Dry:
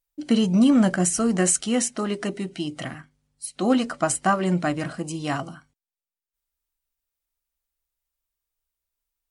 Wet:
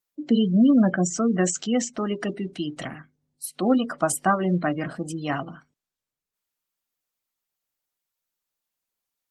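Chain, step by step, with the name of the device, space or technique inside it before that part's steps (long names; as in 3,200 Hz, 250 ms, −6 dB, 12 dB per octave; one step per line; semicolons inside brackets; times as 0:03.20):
0:02.72–0:03.46: dynamic equaliser 7,500 Hz, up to +3 dB, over −53 dBFS, Q 1.1
noise-suppressed video call (high-pass filter 130 Hz 24 dB per octave; gate on every frequency bin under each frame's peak −25 dB strong; Opus 20 kbit/s 48,000 Hz)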